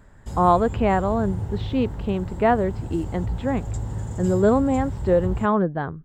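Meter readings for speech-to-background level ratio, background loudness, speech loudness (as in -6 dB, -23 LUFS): 8.5 dB, -31.5 LUFS, -23.0 LUFS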